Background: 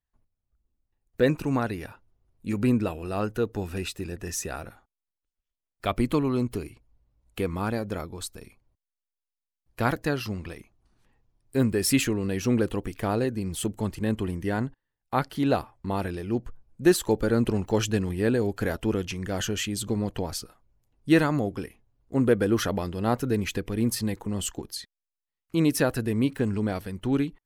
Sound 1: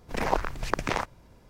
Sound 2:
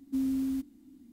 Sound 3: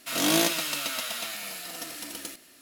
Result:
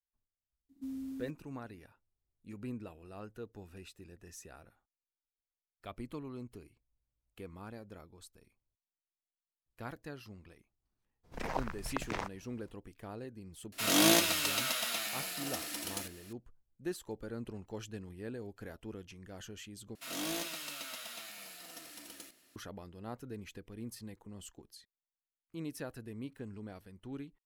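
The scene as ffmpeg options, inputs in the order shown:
ffmpeg -i bed.wav -i cue0.wav -i cue1.wav -i cue2.wav -filter_complex "[3:a]asplit=2[link_01][link_02];[0:a]volume=-19dB[link_03];[link_02]asoftclip=type=tanh:threshold=-18.5dB[link_04];[link_03]asplit=2[link_05][link_06];[link_05]atrim=end=19.954[link_07];[link_04]atrim=end=2.61,asetpts=PTS-STARTPTS,volume=-12dB[link_08];[link_06]atrim=start=22.556[link_09];[2:a]atrim=end=1.12,asetpts=PTS-STARTPTS,volume=-11.5dB,afade=type=in:duration=0.004:curve=hsin,afade=type=out:start_time=1.116:duration=0.004:curve=hsin,adelay=690[link_10];[1:a]atrim=end=1.49,asetpts=PTS-STARTPTS,volume=-10dB,afade=type=in:duration=0.02,afade=type=out:start_time=1.47:duration=0.02,adelay=11230[link_11];[link_01]atrim=end=2.61,asetpts=PTS-STARTPTS,volume=-2dB,afade=type=in:duration=0.004:curve=hsin,afade=type=out:start_time=2.606:duration=0.004:curve=hsin,adelay=13720[link_12];[link_07][link_08]acrossfade=duration=0.004:curve1=hsin:curve2=hsin[link_13];[link_13][link_09]acrossfade=duration=0.004:curve1=hsin:curve2=hsin[link_14];[link_14][link_10][link_11][link_12]amix=inputs=4:normalize=0" out.wav

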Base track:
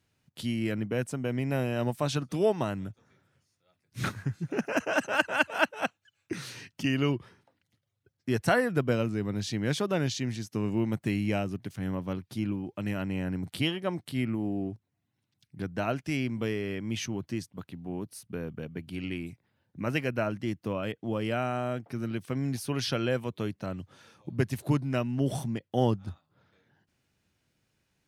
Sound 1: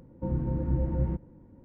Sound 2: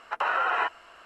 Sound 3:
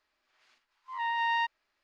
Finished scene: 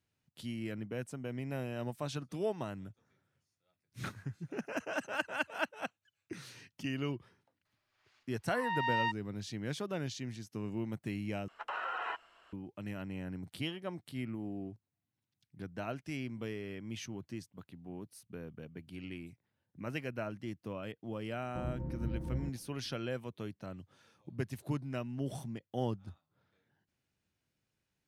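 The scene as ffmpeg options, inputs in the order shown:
ffmpeg -i bed.wav -i cue0.wav -i cue1.wav -i cue2.wav -filter_complex "[0:a]volume=-9.5dB[link_01];[2:a]equalizer=frequency=3300:width=4.4:gain=5.5[link_02];[link_01]asplit=2[link_03][link_04];[link_03]atrim=end=11.484[link_05];[link_02]atrim=end=1.05,asetpts=PTS-STARTPTS,volume=-12.5dB[link_06];[link_04]atrim=start=12.526[link_07];[3:a]atrim=end=1.83,asetpts=PTS-STARTPTS,volume=-4dB,afade=type=in:duration=0.004:curve=hsin,afade=type=out:start_time=1.826:duration=0.004:curve=hsin,adelay=7650[link_08];[1:a]atrim=end=1.64,asetpts=PTS-STARTPTS,volume=-10.5dB,afade=type=in:duration=0.004:curve=hsin,afade=type=out:start_time=1.636:duration=0.004:curve=hsin,adelay=21330[link_09];[link_05][link_06]acrossfade=duration=0.004:curve1=hsin:curve2=hsin[link_10];[link_10][link_07]acrossfade=duration=0.004:curve1=hsin:curve2=hsin[link_11];[link_11][link_08][link_09]amix=inputs=3:normalize=0" out.wav

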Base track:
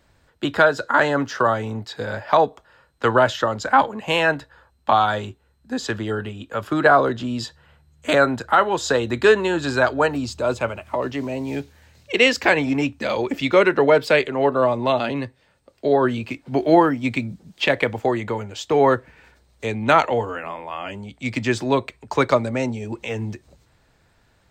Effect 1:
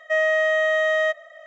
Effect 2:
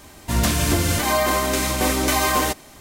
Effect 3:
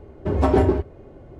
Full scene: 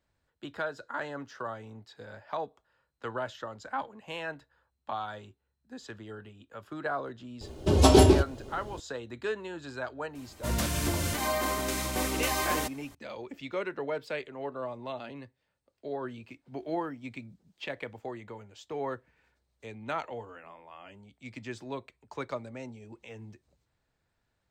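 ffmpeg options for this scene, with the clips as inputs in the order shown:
ffmpeg -i bed.wav -i cue0.wav -i cue1.wav -i cue2.wav -filter_complex "[0:a]volume=-18.5dB[link_01];[3:a]aexciter=amount=9.6:drive=3.4:freq=2900,atrim=end=1.39,asetpts=PTS-STARTPTS,volume=-0.5dB,afade=type=in:duration=0.004:curve=hsin,afade=type=out:start_time=1.386:duration=0.004:curve=hsin,adelay=7410[link_02];[2:a]atrim=end=2.8,asetpts=PTS-STARTPTS,volume=-10dB,afade=type=in:duration=0.004:curve=hsin,afade=type=out:start_time=2.796:duration=0.004:curve=hsin,adelay=10150[link_03];[link_01][link_02][link_03]amix=inputs=3:normalize=0" out.wav

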